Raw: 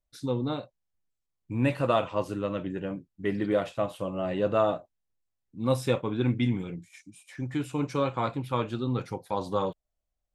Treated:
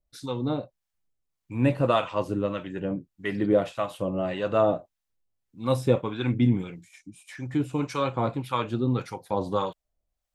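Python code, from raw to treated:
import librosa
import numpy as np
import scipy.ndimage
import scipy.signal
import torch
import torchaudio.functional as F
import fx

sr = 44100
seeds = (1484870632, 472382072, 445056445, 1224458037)

y = fx.harmonic_tremolo(x, sr, hz=1.7, depth_pct=70, crossover_hz=790.0)
y = y * librosa.db_to_amplitude(5.5)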